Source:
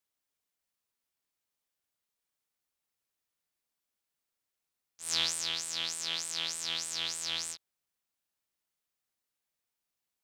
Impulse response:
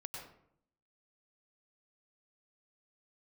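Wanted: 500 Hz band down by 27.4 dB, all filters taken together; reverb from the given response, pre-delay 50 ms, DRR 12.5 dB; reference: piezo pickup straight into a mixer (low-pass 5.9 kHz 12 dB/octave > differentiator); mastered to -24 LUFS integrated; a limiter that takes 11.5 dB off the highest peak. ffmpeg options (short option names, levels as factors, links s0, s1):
-filter_complex "[0:a]equalizer=f=500:t=o:g=-7.5,alimiter=level_in=1.19:limit=0.0631:level=0:latency=1,volume=0.841,asplit=2[s0][s1];[1:a]atrim=start_sample=2205,adelay=50[s2];[s1][s2]afir=irnorm=-1:irlink=0,volume=0.299[s3];[s0][s3]amix=inputs=2:normalize=0,lowpass=5900,aderivative,volume=10.6"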